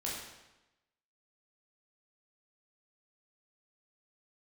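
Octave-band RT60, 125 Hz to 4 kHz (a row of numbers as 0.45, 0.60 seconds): 1.0, 1.0, 1.0, 1.0, 0.95, 0.90 seconds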